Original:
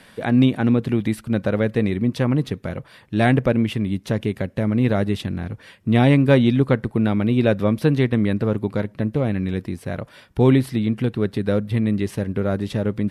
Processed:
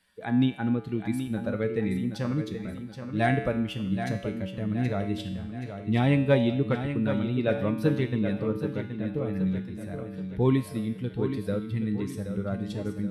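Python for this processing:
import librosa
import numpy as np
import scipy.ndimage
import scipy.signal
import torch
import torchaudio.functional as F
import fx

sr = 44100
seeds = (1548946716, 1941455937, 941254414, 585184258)

p1 = fx.bin_expand(x, sr, power=1.5)
p2 = fx.comb_fb(p1, sr, f0_hz=63.0, decay_s=0.86, harmonics='odd', damping=0.0, mix_pct=80)
p3 = p2 + fx.echo_feedback(p2, sr, ms=775, feedback_pct=47, wet_db=-9, dry=0)
y = F.gain(torch.from_numpy(p3), 6.5).numpy()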